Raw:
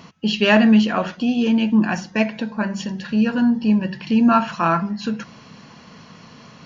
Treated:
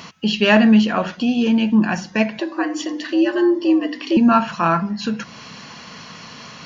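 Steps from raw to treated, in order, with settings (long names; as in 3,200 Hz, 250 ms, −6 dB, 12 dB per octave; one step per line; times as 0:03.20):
0:02.39–0:04.17: frequency shifter +110 Hz
one half of a high-frequency compander encoder only
level +1 dB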